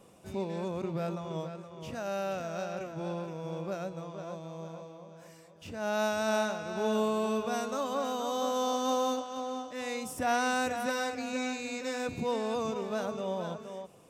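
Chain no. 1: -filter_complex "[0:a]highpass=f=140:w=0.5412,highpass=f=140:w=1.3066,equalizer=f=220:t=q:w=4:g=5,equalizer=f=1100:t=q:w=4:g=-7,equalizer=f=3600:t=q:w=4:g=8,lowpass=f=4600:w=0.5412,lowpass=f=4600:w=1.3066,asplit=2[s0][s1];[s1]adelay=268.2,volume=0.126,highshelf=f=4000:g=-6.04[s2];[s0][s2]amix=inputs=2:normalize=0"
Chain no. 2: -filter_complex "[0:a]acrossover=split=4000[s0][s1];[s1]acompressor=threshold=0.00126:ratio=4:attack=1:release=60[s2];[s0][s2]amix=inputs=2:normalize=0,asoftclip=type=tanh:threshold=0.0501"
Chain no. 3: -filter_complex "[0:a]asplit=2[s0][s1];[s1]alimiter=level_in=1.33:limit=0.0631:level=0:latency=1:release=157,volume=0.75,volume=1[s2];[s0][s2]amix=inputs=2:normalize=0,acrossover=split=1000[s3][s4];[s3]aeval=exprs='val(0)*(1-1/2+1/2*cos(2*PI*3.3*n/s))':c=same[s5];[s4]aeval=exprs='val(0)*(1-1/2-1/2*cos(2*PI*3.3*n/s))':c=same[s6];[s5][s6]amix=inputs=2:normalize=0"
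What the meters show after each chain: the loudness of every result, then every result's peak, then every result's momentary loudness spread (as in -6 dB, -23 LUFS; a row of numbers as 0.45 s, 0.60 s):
-32.5 LUFS, -35.5 LUFS, -34.0 LUFS; -17.0 dBFS, -26.0 dBFS, -18.5 dBFS; 13 LU, 10 LU, 11 LU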